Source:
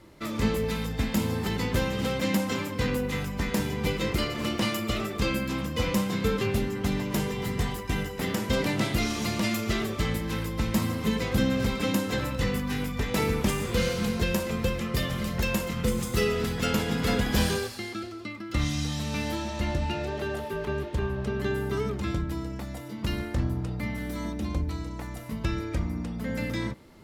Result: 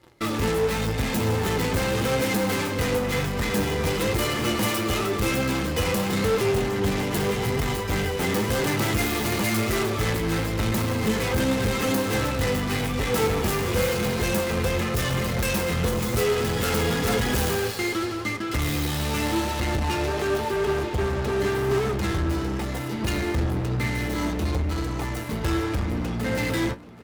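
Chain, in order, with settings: tracing distortion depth 0.46 ms; high-pass 48 Hz 12 dB/octave; comb 2.4 ms, depth 35%; in parallel at -6.5 dB: fuzz box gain 37 dB, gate -46 dBFS; on the sum: flange 0.92 Hz, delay 7.3 ms, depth 4.8 ms, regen +60%; on a send: tape echo 781 ms, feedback 69%, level -17 dB, low-pass 3.9 kHz; on the sum: trim -1.5 dB

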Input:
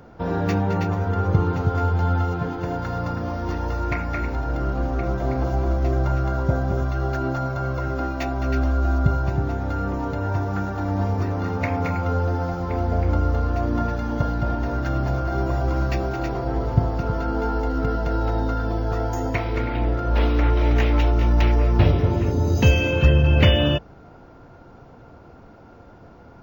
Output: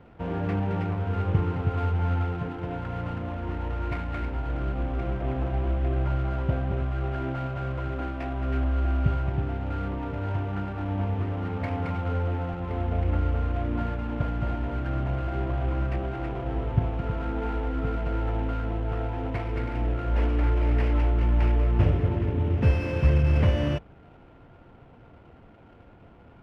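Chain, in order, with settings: CVSD coder 16 kbps; bass shelf 230 Hz +4 dB; sliding maximum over 3 samples; trim -7 dB

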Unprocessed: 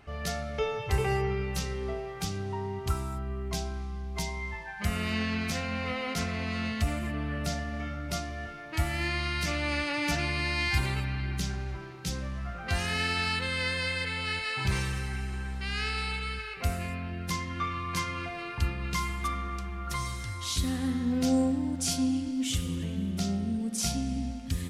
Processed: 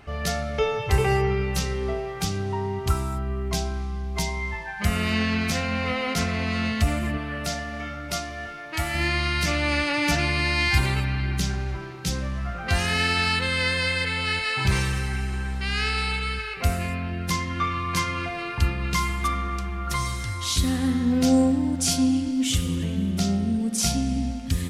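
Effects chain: 7.17–8.95 s: bass shelf 340 Hz -8 dB; trim +6.5 dB

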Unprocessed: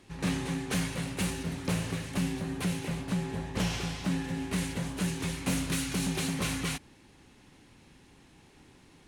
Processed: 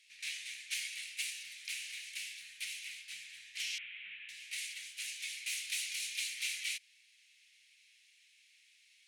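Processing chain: 3.78–4.29 s: one-bit delta coder 16 kbps, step -39.5 dBFS; elliptic high-pass 2.2 kHz, stop band 60 dB; tilt EQ -2 dB/octave; trim +3.5 dB

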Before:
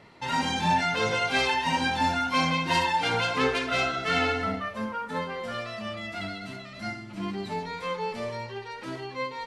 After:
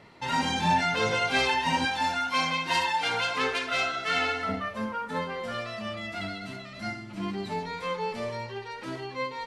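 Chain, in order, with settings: 1.85–4.49 s: bass shelf 420 Hz -11 dB

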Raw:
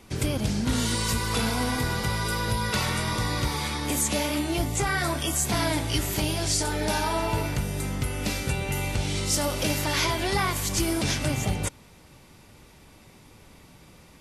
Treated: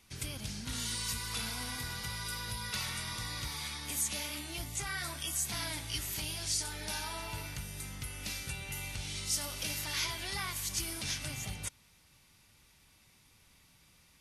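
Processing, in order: amplifier tone stack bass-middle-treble 5-5-5; band-stop 7.5 kHz, Q 15

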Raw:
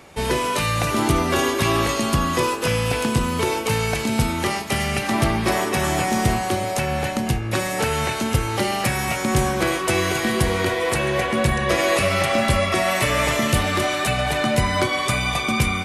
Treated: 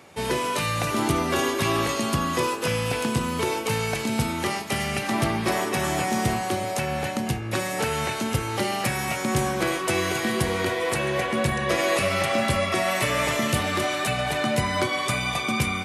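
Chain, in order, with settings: high-pass 92 Hz; trim -3.5 dB

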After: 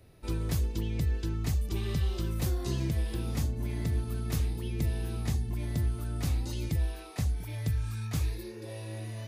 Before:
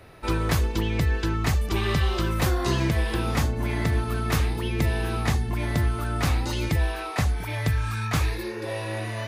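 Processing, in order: peaking EQ 1.3 kHz -13.5 dB 2.8 oct; trim -5 dB

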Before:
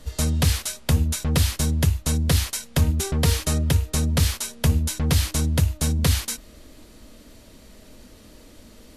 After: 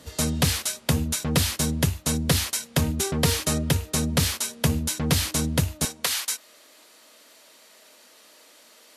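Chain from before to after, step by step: high-pass 130 Hz 12 dB/octave, from 5.85 s 740 Hz; trim +1.5 dB

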